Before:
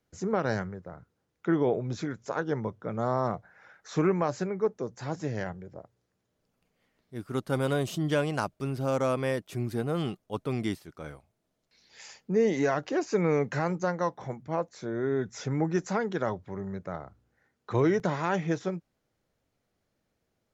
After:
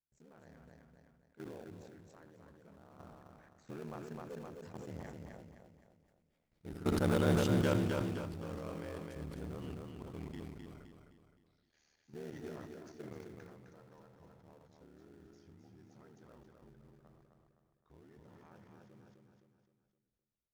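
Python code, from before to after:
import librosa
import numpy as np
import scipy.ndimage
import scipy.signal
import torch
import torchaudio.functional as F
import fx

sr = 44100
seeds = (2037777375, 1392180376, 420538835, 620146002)

p1 = fx.doppler_pass(x, sr, speed_mps=24, closest_m=13.0, pass_at_s=7.12)
p2 = fx.low_shelf(p1, sr, hz=78.0, db=8.5)
p3 = p2 * np.sin(2.0 * np.pi * 38.0 * np.arange(len(p2)) / sr)
p4 = fx.sample_hold(p3, sr, seeds[0], rate_hz=1100.0, jitter_pct=20)
p5 = p3 + (p4 * librosa.db_to_amplitude(-9.0))
p6 = p5 + 10.0 ** (-13.5 / 20.0) * np.pad(p5, (int(79 * sr / 1000.0), 0))[:len(p5)]
p7 = fx.level_steps(p6, sr, step_db=15)
p8 = p7 + fx.echo_feedback(p7, sr, ms=259, feedback_pct=39, wet_db=-4.5, dry=0)
y = fx.sustainer(p8, sr, db_per_s=28.0)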